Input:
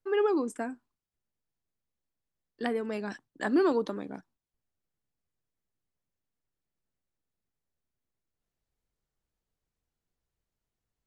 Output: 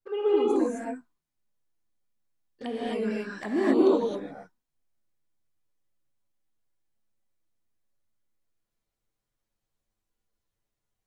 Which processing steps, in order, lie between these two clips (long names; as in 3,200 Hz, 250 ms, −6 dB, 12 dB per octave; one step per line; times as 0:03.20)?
flanger swept by the level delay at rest 9.1 ms, full sweep at −28.5 dBFS
reverb whose tail is shaped and stops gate 290 ms rising, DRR −7 dB
level −2.5 dB